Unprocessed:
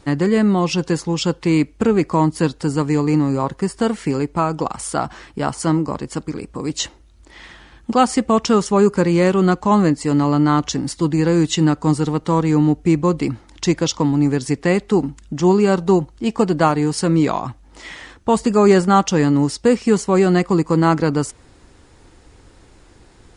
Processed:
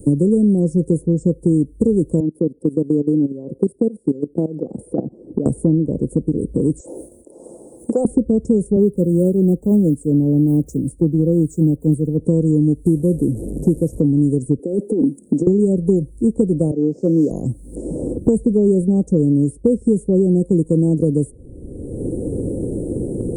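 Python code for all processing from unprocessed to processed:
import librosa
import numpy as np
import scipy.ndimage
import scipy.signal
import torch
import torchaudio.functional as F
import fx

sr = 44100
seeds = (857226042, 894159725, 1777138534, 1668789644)

y = fx.chain(x, sr, fx.level_steps(step_db=18),
    fx.cheby1_highpass(hz=270.0, order=2),
    fx.air_absorb(metres=440.0), at=(2.2, 5.46))
y = fx.chain(y, sr, fx.highpass(hz=930.0, slope=12),
    fx.sustainer(db_per_s=86.0), at=(6.8, 8.05))
y = fx.chain(y, sr, fx.block_float(bits=7),
    fx.band_widen(depth_pct=100), at=(8.76, 12.19))
y = fx.chain(y, sr, fx.delta_mod(bps=64000, step_db=-25.0),
    fx.bessel_lowpass(hz=7300.0, order=2), at=(12.86, 14.0))
y = fx.chain(y, sr, fx.highpass(hz=230.0, slope=24),
    fx.over_compress(threshold_db=-24.0, ratio=-1.0), at=(14.59, 15.47))
y = fx.chain(y, sr, fx.cvsd(bps=32000),
    fx.highpass(hz=260.0, slope=12),
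    fx.band_widen(depth_pct=100), at=(16.71, 17.31))
y = scipy.signal.sosfilt(scipy.signal.cheby1(4, 1.0, [510.0, 8800.0], 'bandstop', fs=sr, output='sos'), y)
y = fx.low_shelf(y, sr, hz=180.0, db=4.5)
y = fx.band_squash(y, sr, depth_pct=100)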